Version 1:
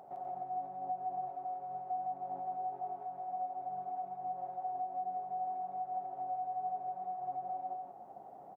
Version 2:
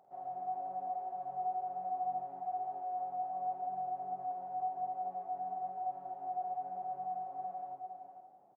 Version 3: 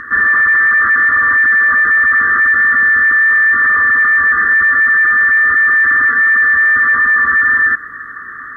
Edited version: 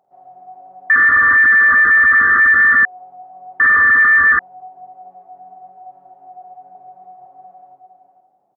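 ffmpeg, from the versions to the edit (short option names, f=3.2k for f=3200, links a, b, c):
-filter_complex "[2:a]asplit=2[a][b];[1:a]asplit=4[c][d][e][f];[c]atrim=end=0.902[g];[a]atrim=start=0.898:end=2.852[h];[d]atrim=start=2.848:end=3.602[i];[b]atrim=start=3.598:end=4.392[j];[e]atrim=start=4.388:end=6.752[k];[0:a]atrim=start=6.748:end=7.262[l];[f]atrim=start=7.258[m];[g][h]acrossfade=d=0.004:c1=hsin:c2=hsin[n];[n][i]acrossfade=d=0.004:c1=hsin:c2=hsin[o];[o][j]acrossfade=d=0.004:c1=hsin:c2=hsin[p];[p][k]acrossfade=d=0.004:c1=hsin:c2=hsin[q];[q][l]acrossfade=d=0.004:c1=hsin:c2=hsin[r];[r][m]acrossfade=d=0.004:c1=hsin:c2=hsin"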